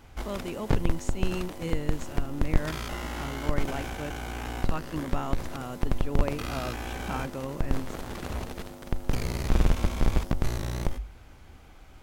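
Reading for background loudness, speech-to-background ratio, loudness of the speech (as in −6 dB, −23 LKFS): −33.0 LKFS, −4.0 dB, −37.0 LKFS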